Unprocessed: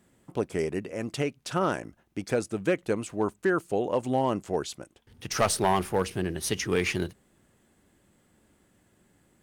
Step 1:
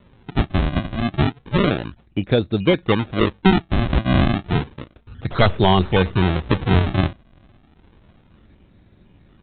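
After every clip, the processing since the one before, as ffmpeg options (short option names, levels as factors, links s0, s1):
-af "aemphasis=mode=reproduction:type=bsi,aresample=8000,acrusher=samples=10:mix=1:aa=0.000001:lfo=1:lforange=16:lforate=0.31,aresample=44100,volume=2.11"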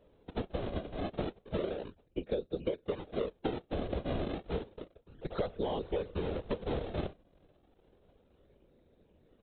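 -af "afftfilt=real='hypot(re,im)*cos(2*PI*random(0))':imag='hypot(re,im)*sin(2*PI*random(1))':win_size=512:overlap=0.75,equalizer=f=125:t=o:w=1:g=-7,equalizer=f=250:t=o:w=1:g=-3,equalizer=f=500:t=o:w=1:g=12,equalizer=f=1000:t=o:w=1:g=-4,equalizer=f=2000:t=o:w=1:g=-5,acompressor=threshold=0.0708:ratio=12,volume=0.447"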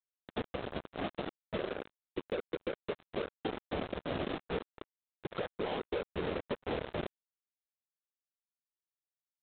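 -af "highpass=f=150:p=1,alimiter=level_in=1.26:limit=0.0631:level=0:latency=1:release=354,volume=0.794,aresample=8000,acrusher=bits=5:mix=0:aa=0.5,aresample=44100,volume=1.12"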